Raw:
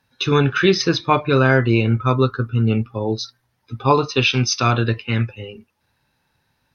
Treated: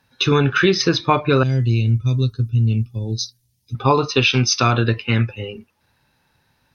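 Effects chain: 1.43–3.75 s: FFT filter 120 Hz 0 dB, 1.4 kHz -29 dB, 2.5 kHz -11 dB, 6.6 kHz +5 dB; compression 2.5:1, threshold -17 dBFS, peak gain reduction 5.5 dB; trim +4 dB

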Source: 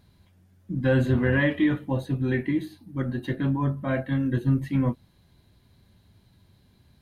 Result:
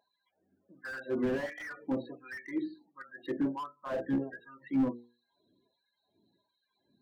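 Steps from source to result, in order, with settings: 3.92–4.40 s: octave divider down 1 oct, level +1 dB; loudest bins only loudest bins 32; LFO high-pass sine 1.4 Hz 270–1600 Hz; hum notches 60/120/180/240/300/360/420/480 Hz; slew-rate limiter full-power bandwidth 39 Hz; trim -7 dB

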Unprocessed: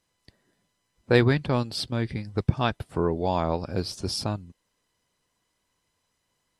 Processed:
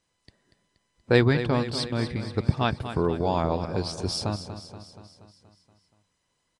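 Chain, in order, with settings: on a send: feedback delay 238 ms, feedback 58%, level -11 dB; on the sum: resampled via 22.05 kHz

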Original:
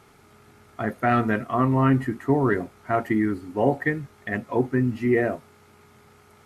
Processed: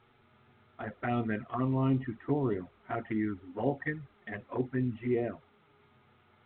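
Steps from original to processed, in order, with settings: touch-sensitive flanger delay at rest 8.8 ms, full sweep at -16.5 dBFS; trim -8 dB; A-law 64 kbps 8 kHz

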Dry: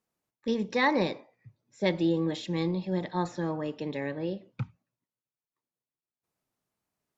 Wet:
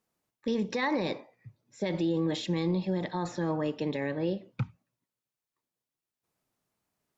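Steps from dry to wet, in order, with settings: peak limiter -24 dBFS, peak gain reduction 11 dB; trim +3 dB

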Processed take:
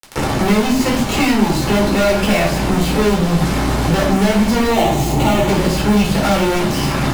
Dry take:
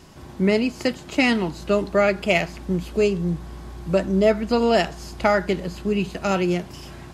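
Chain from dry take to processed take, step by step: fuzz box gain 44 dB, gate -38 dBFS; 4.70–5.48 s: graphic EQ with 31 bands 125 Hz +11 dB, 315 Hz +10 dB, 800 Hz +6 dB, 1.6 kHz -11 dB, 5 kHz -11 dB, 10 kHz -5 dB; simulated room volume 360 m³, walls furnished, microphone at 4.3 m; three bands compressed up and down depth 70%; trim -8.5 dB

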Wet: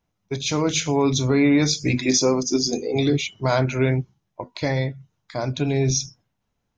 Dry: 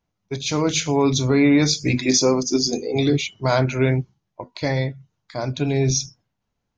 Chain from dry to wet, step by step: band-stop 4.5 kHz, Q 17; in parallel at -3 dB: compression, threshold -26 dBFS, peak gain reduction 13 dB; on the sum: trim -3 dB

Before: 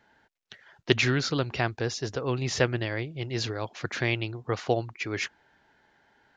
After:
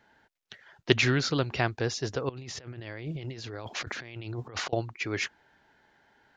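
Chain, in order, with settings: 2.29–4.73 s: compressor with a negative ratio -40 dBFS, ratio -1

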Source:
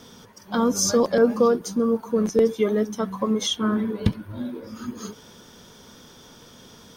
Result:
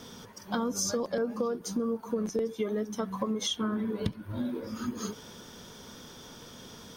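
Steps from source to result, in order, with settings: compression 6:1, threshold -28 dBFS, peak gain reduction 14.5 dB

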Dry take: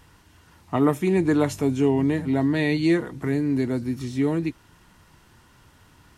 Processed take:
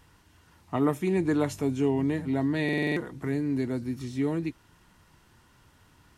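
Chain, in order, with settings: buffer glitch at 2.64 s, samples 2048, times 6; trim -5 dB

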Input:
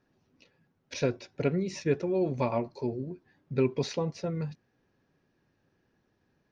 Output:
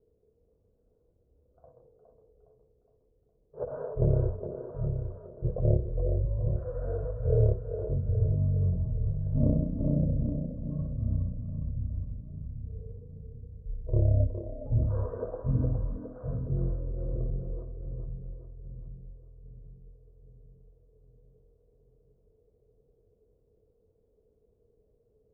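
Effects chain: resonant low-pass 1.9 kHz, resonance Q 6.7; two-band feedback delay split 810 Hz, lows 203 ms, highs 106 ms, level -6 dB; wide varispeed 0.257×

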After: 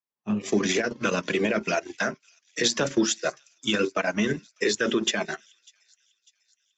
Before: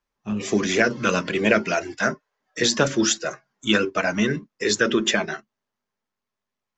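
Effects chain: high-pass 140 Hz 12 dB/octave; peaking EQ 1.4 kHz -2.5 dB 0.26 oct; peak limiter -15.5 dBFS, peak gain reduction 10.5 dB; transient shaper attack +3 dB, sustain -12 dB; on a send: feedback echo behind a high-pass 597 ms, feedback 64%, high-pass 4.2 kHz, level -16.5 dB; on the sum: three bands expanded up and down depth 40%

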